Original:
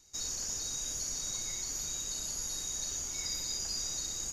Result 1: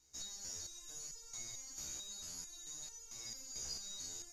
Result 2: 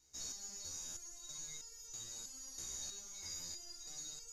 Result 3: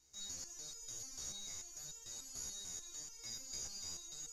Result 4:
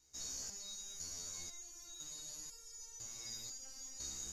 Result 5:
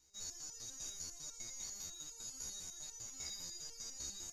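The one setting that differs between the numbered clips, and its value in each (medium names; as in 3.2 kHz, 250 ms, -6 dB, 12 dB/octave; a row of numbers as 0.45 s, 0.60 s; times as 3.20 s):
resonator arpeggio, rate: 4.5 Hz, 3.1 Hz, 6.8 Hz, 2 Hz, 10 Hz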